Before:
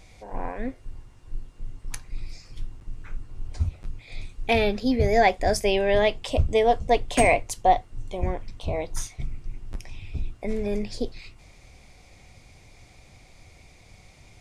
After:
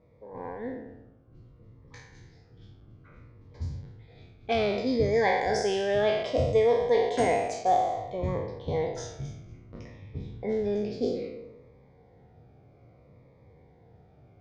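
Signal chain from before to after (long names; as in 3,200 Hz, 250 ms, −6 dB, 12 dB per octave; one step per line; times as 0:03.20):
peak hold with a decay on every bin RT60 1.08 s
low-pass that shuts in the quiet parts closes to 1,100 Hz, open at −15.5 dBFS
dynamic equaliser 1,200 Hz, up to +6 dB, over −33 dBFS, Q 0.91
speech leveller within 3 dB 0.5 s
loudspeaker in its box 100–6,700 Hz, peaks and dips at 130 Hz +5 dB, 470 Hz +9 dB, 2,600 Hz −9 dB
phaser whose notches keep moving one way falling 0.61 Hz
level −6.5 dB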